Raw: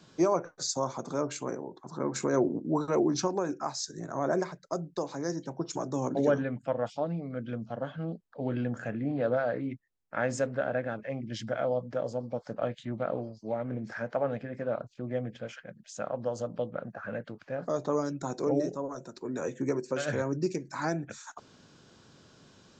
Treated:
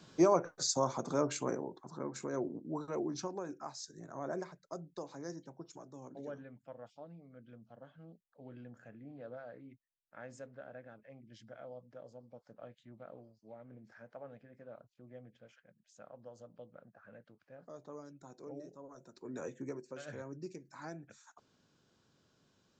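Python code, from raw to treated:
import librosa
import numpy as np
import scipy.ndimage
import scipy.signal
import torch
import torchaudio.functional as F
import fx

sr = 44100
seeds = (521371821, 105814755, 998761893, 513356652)

y = fx.gain(x, sr, db=fx.line((1.63, -1.0), (2.15, -11.0), (5.3, -11.0), (5.91, -19.5), (18.65, -19.5), (19.38, -8.0), (19.89, -15.0)))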